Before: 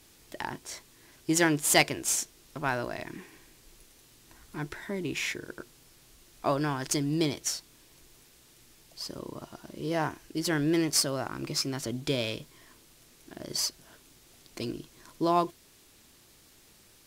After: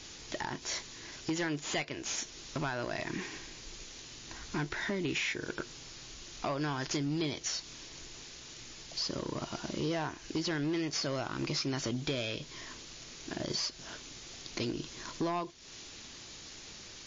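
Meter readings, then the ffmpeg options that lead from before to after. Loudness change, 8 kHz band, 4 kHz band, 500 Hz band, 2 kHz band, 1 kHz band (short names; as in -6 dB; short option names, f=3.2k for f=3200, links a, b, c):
-7.0 dB, -7.5 dB, -2.5 dB, -5.0 dB, -4.0 dB, -6.5 dB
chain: -filter_complex "[0:a]acrossover=split=3900[a][b];[b]acompressor=threshold=-44dB:ratio=4:attack=1:release=60[c];[a][c]amix=inputs=2:normalize=0,highshelf=f=2.2k:g=6.5,acompressor=threshold=-38dB:ratio=6,asoftclip=type=hard:threshold=-35.5dB,volume=8dB" -ar 16000 -c:a libmp3lame -b:a 32k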